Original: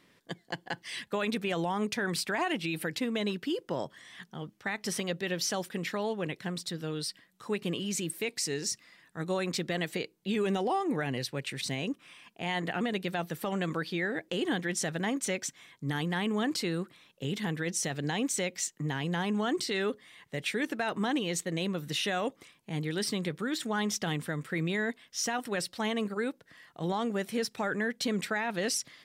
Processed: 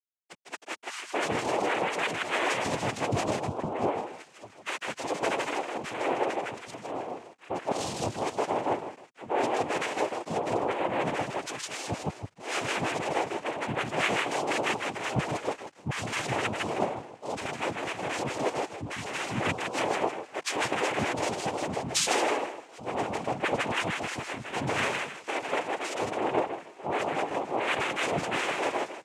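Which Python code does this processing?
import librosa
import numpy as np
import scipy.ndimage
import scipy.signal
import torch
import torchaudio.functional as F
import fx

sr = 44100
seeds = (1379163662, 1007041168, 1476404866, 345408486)

y = fx.sine_speech(x, sr)
y = fx.highpass(y, sr, hz=520.0, slope=6)
y = fx.high_shelf(y, sr, hz=2600.0, db=-7.5)
y = fx.echo_feedback(y, sr, ms=158, feedback_pct=36, wet_db=-3)
y = fx.over_compress(y, sr, threshold_db=-33.0, ratio=-1.0)
y = np.where(np.abs(y) >= 10.0 ** (-53.0 / 20.0), y, 0.0)
y = fx.power_curve(y, sr, exponent=0.7)
y = fx.noise_vocoder(y, sr, seeds[0], bands=4)
y = fx.band_widen(y, sr, depth_pct=100)
y = F.gain(torch.from_numpy(y), 3.0).numpy()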